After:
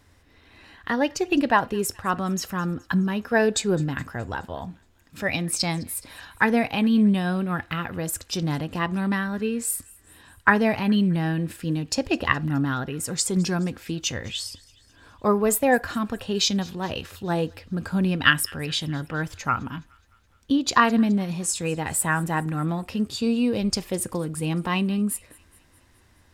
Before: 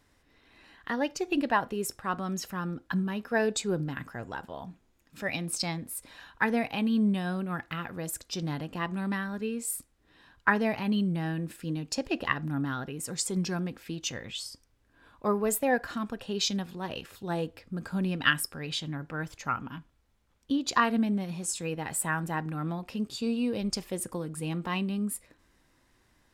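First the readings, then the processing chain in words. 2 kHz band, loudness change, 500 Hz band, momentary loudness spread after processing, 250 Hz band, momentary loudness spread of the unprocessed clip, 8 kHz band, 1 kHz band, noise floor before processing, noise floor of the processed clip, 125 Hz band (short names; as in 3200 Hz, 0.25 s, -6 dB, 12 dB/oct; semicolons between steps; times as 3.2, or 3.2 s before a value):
+6.5 dB, +6.5 dB, +6.5 dB, 11 LU, +7.0 dB, 11 LU, +6.5 dB, +6.5 dB, -68 dBFS, -58 dBFS, +7.5 dB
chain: bell 86 Hz +11.5 dB 0.46 oct; on a send: thin delay 0.21 s, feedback 57%, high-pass 1800 Hz, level -22.5 dB; on the sum: gain +6.5 dB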